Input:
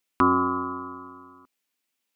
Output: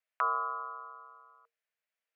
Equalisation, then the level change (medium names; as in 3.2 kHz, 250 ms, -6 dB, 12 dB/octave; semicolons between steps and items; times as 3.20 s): rippled Chebyshev high-pass 450 Hz, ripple 9 dB; treble shelf 2.9 kHz -11 dB; 0.0 dB